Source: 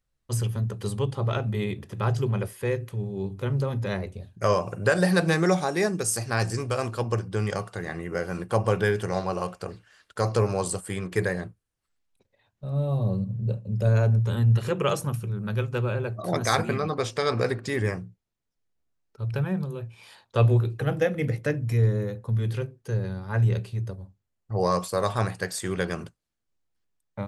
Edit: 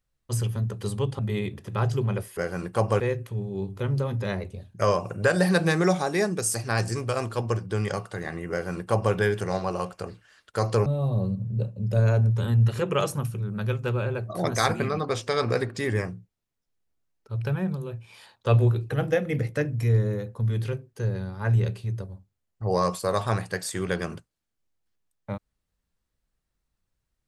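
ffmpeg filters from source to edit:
-filter_complex "[0:a]asplit=5[s0][s1][s2][s3][s4];[s0]atrim=end=1.192[s5];[s1]atrim=start=1.438:end=2.622[s6];[s2]atrim=start=8.128:end=8.762[s7];[s3]atrim=start=2.618:end=10.482[s8];[s4]atrim=start=12.748[s9];[s5][s6]acrossfade=d=0.004:c1=hsin:c2=hsin[s10];[s10][s7]acrossfade=d=0.004:c1=hsin:c2=hsin[s11];[s11][s8]acrossfade=d=0.004:c1=hsin:c2=hsin[s12];[s12][s9]acrossfade=d=0.004:c1=hsin:c2=hsin"

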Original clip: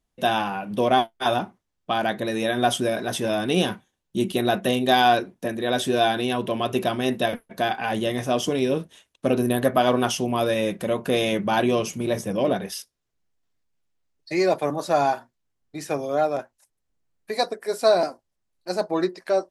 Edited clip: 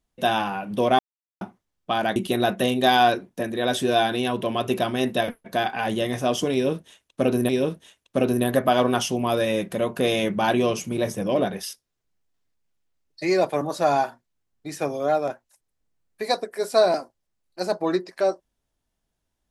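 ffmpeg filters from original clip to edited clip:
-filter_complex "[0:a]asplit=5[s0][s1][s2][s3][s4];[s0]atrim=end=0.99,asetpts=PTS-STARTPTS,afade=t=out:st=0.986:d=0.004:c=hsin[s5];[s1]atrim=start=0.99:end=1.41,asetpts=PTS-STARTPTS,volume=0[s6];[s2]atrim=start=1.41:end=2.162,asetpts=PTS-STARTPTS,afade=t=in:d=0.004:c=hsin[s7];[s3]atrim=start=4.208:end=9.542[s8];[s4]atrim=start=8.578[s9];[s5][s6][s7]concat=n=3:v=0:a=1[s10];[s10][s8]acrossfade=d=0.004:c1=hsin:c2=hsin[s11];[s11][s9]acrossfade=d=0.004:c1=hsin:c2=hsin"

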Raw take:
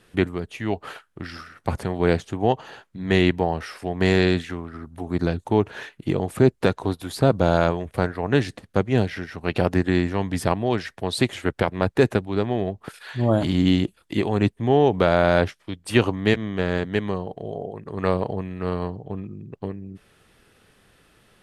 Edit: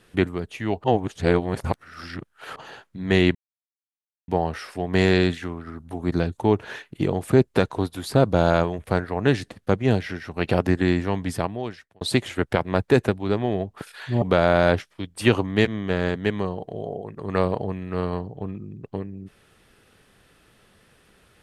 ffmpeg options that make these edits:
-filter_complex "[0:a]asplit=6[s0][s1][s2][s3][s4][s5];[s0]atrim=end=0.842[s6];[s1]atrim=start=0.838:end=2.562,asetpts=PTS-STARTPTS,areverse[s7];[s2]atrim=start=2.558:end=3.35,asetpts=PTS-STARTPTS,afade=t=out:st=0.788:d=0.004:c=hsin,apad=pad_dur=0.93[s8];[s3]atrim=start=3.35:end=11.08,asetpts=PTS-STARTPTS,afade=t=in:d=0.004:c=hsin,afade=t=out:st=6.8:d=0.93[s9];[s4]atrim=start=11.08:end=13.292,asetpts=PTS-STARTPTS,afade=t=in:d=0.004:c=hsin[s10];[s5]atrim=start=14.908[s11];[s6][s7]acrossfade=d=0.004:c1=hsin:c2=hsin[s12];[s8][s9][s10]concat=n=3:v=0:a=1[s13];[s12][s13]acrossfade=d=0.004:c1=hsin:c2=hsin[s14];[s14][s11]acrossfade=d=0.004:c1=hsin:c2=hsin"

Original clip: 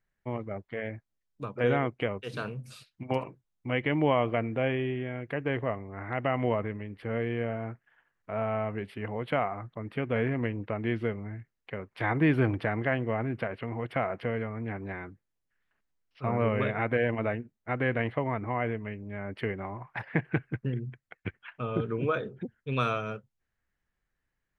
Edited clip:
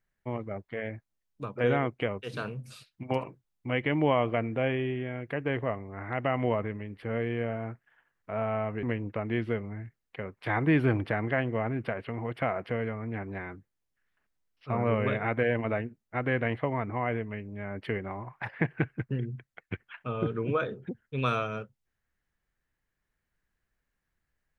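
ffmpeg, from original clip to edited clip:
-filter_complex "[0:a]asplit=2[s0][s1];[s0]atrim=end=8.832[s2];[s1]atrim=start=10.368[s3];[s2][s3]acrossfade=d=0.004:c1=hsin:c2=hsin"

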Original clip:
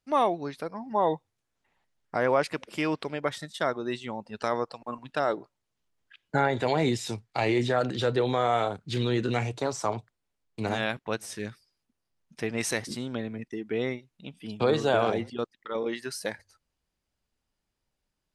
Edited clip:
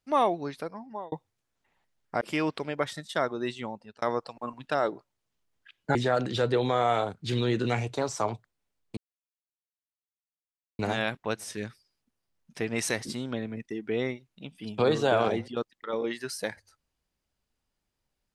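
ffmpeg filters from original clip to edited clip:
-filter_complex "[0:a]asplit=6[s0][s1][s2][s3][s4][s5];[s0]atrim=end=1.12,asetpts=PTS-STARTPTS,afade=t=out:st=0.59:d=0.53[s6];[s1]atrim=start=1.12:end=2.212,asetpts=PTS-STARTPTS,afade=t=in:d=0.004:c=hsin[s7];[s2]atrim=start=2.658:end=4.47,asetpts=PTS-STARTPTS,afade=t=out:st=1.442:d=0.37[s8];[s3]atrim=start=4.47:end=6.402,asetpts=PTS-STARTPTS,afade=t=in:d=0.004:c=hsin[s9];[s4]atrim=start=7.588:end=10.61,asetpts=PTS-STARTPTS,afade=t=out:st=3.018:d=0.004:c=hsin,apad=pad_dur=1.82[s10];[s5]atrim=start=10.61,asetpts=PTS-STARTPTS,afade=t=in:d=0.004:c=hsin[s11];[s6][s7]concat=n=2:v=0:a=1[s12];[s8][s9]concat=n=2:v=0:a=1[s13];[s12][s13]acrossfade=d=0.004:c1=hsin:c2=hsin[s14];[s10][s11]concat=n=2:v=0:a=1[s15];[s14][s15]acrossfade=d=0.004:c1=hsin:c2=hsin"

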